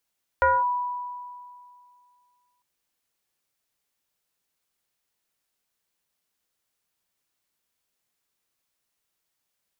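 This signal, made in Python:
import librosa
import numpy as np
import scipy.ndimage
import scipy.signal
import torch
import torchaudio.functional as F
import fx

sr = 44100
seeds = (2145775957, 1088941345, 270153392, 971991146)

y = fx.fm2(sr, length_s=2.2, level_db=-15.0, carrier_hz=983.0, ratio=0.46, index=1.3, index_s=0.22, decay_s=2.31, shape='linear')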